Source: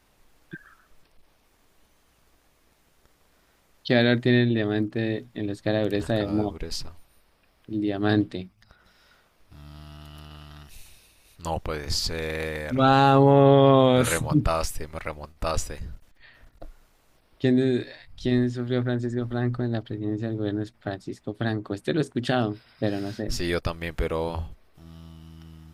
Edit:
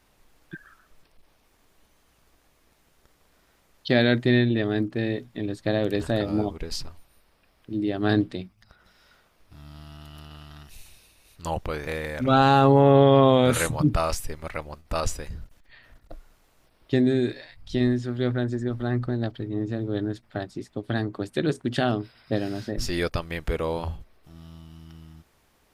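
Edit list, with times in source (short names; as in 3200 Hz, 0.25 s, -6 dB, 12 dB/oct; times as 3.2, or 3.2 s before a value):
11.87–12.38 cut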